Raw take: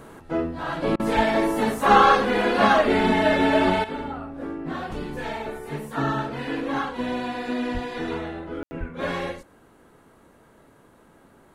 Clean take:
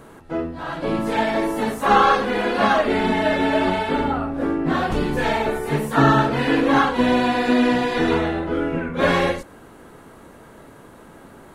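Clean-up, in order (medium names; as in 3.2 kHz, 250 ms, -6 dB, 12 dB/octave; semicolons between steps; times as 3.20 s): 1.15–1.27 s: high-pass 140 Hz 24 dB/octave; 7.73–7.85 s: high-pass 140 Hz 24 dB/octave; 8.79–8.91 s: high-pass 140 Hz 24 dB/octave; room tone fill 8.63–8.71 s; interpolate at 0.96 s, 35 ms; 3.84 s: gain correction +10 dB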